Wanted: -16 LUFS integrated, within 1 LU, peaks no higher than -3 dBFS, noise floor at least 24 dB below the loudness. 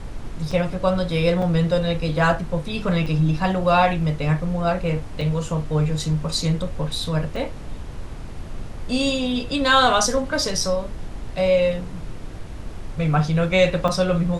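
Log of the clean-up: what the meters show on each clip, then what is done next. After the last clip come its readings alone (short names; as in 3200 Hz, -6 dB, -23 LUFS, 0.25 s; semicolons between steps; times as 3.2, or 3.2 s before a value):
dropouts 6; longest dropout 4.0 ms; noise floor -34 dBFS; noise floor target -46 dBFS; loudness -21.5 LUFS; peak -4.5 dBFS; loudness target -16.0 LUFS
-> interpolate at 0.51/1.42/3.06/5.21/7.36/13.88, 4 ms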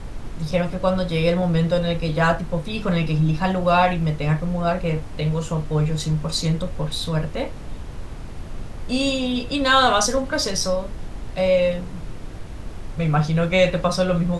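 dropouts 0; noise floor -34 dBFS; noise floor target -46 dBFS
-> noise print and reduce 12 dB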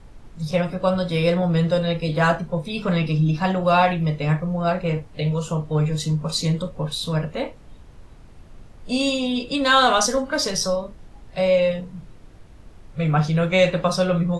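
noise floor -45 dBFS; noise floor target -46 dBFS
-> noise print and reduce 6 dB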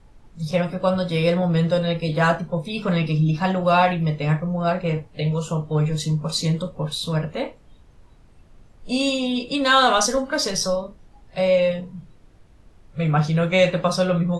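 noise floor -51 dBFS; loudness -21.5 LUFS; peak -4.5 dBFS; loudness target -16.0 LUFS
-> gain +5.5 dB; limiter -3 dBFS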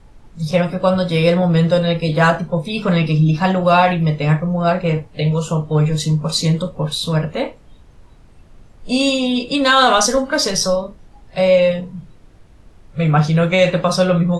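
loudness -16.5 LUFS; peak -3.0 dBFS; noise floor -46 dBFS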